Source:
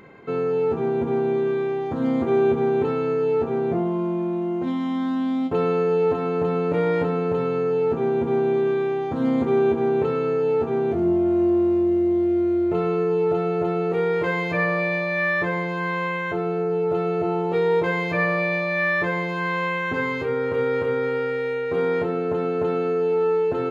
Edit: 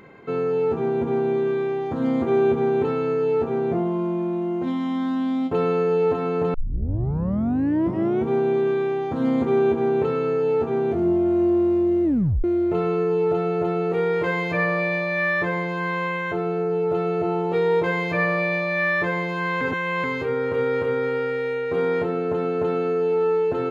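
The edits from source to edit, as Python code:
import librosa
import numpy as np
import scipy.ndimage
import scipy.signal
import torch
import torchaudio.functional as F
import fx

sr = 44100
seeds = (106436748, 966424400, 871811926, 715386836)

y = fx.edit(x, sr, fx.tape_start(start_s=6.54, length_s=1.75),
    fx.tape_stop(start_s=12.04, length_s=0.4),
    fx.reverse_span(start_s=19.61, length_s=0.43), tone=tone)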